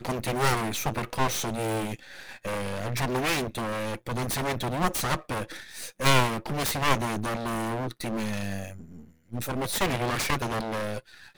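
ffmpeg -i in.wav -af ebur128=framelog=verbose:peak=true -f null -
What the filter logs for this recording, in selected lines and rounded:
Integrated loudness:
  I:         -28.6 LUFS
  Threshold: -39.0 LUFS
Loudness range:
  LRA:         3.4 LU
  Threshold: -49.0 LUFS
  LRA low:   -30.7 LUFS
  LRA high:  -27.2 LUFS
True peak:
  Peak:       -5.7 dBFS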